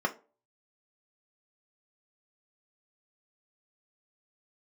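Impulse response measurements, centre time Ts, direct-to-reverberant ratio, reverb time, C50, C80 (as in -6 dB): 6 ms, 3.5 dB, 0.35 s, 17.5 dB, 23.5 dB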